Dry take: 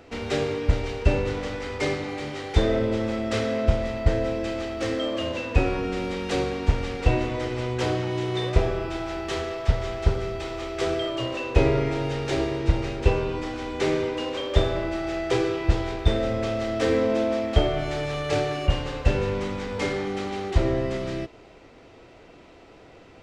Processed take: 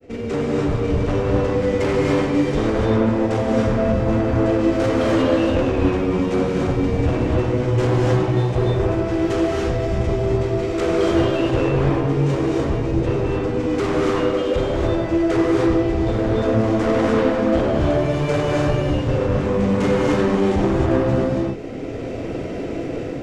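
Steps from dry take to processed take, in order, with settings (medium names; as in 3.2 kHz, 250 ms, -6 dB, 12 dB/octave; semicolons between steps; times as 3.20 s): ten-band graphic EQ 125 Hz +7 dB, 250 Hz +5 dB, 500 Hz +7 dB, 1 kHz -9 dB, 4 kHz -7 dB; level rider gain up to 15.5 dB; granulator 100 ms, grains 20 per s, spray 17 ms, pitch spread up and down by 0 st; saturation -20 dBFS, distortion -6 dB; gated-style reverb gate 320 ms rising, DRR -2 dB; trim +1 dB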